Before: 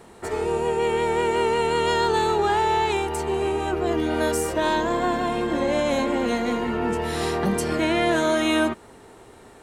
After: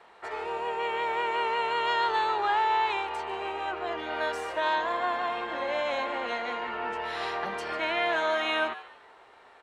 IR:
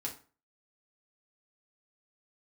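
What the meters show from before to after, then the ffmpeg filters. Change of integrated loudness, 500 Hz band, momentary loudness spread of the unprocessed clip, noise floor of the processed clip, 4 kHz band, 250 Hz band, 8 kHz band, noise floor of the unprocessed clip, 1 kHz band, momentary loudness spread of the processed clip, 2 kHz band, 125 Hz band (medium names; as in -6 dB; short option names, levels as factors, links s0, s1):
-6.0 dB, -9.5 dB, 5 LU, -55 dBFS, -4.0 dB, -18.0 dB, under -15 dB, -48 dBFS, -3.0 dB, 7 LU, -2.0 dB, under -20 dB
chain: -filter_complex "[0:a]acrossover=split=590 4200:gain=0.0794 1 0.0631[s0][s1][s2];[s0][s1][s2]amix=inputs=3:normalize=0,asplit=4[s3][s4][s5][s6];[s4]adelay=147,afreqshift=130,volume=0.158[s7];[s5]adelay=294,afreqshift=260,volume=0.049[s8];[s6]adelay=441,afreqshift=390,volume=0.0153[s9];[s3][s7][s8][s9]amix=inputs=4:normalize=0,volume=0.841"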